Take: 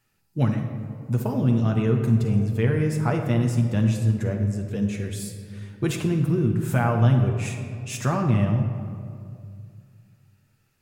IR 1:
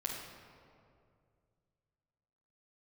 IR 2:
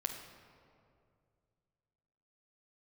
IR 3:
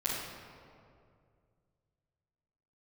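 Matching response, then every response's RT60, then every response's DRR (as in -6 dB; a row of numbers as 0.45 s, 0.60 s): 2; 2.3 s, 2.4 s, 2.3 s; -4.0 dB, 2.0 dB, -13.5 dB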